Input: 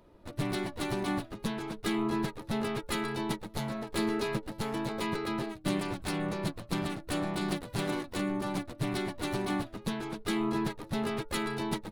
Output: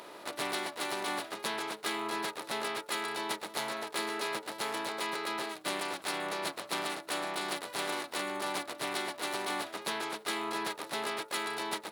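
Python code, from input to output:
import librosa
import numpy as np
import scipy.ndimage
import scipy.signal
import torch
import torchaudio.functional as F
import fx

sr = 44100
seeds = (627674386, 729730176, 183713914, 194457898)

y = fx.bin_compress(x, sr, power=0.6)
y = scipy.signal.sosfilt(scipy.signal.butter(2, 590.0, 'highpass', fs=sr, output='sos'), y)
y = fx.rider(y, sr, range_db=4, speed_s=0.5)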